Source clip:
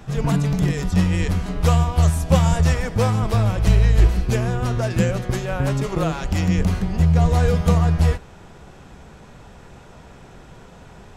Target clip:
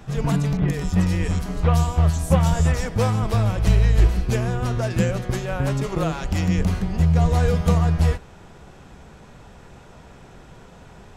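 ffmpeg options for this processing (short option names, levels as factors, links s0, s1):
-filter_complex "[0:a]asettb=1/sr,asplit=3[s0][s1][s2];[s0]atrim=end=0.574[s3];[s1]atrim=start=0.57:end=2.86,asetpts=PTS-STARTPTS,afade=t=in:d=0.004:c=qsin,afade=t=out:st=2.286:d=0.004:c=qsin,acrossover=split=3100[s4][s5];[s5]adelay=110[s6];[s4][s6]amix=inputs=2:normalize=0,atrim=end_sample=100989[s7];[s2]atrim=start=2.856[s8];[s3][s7]acrossfade=d=0.004:c1=hsin:c2=qsin[s9];[s9][s8]acrossfade=d=0.004:c1=qsin:c2=hsin,volume=0.841"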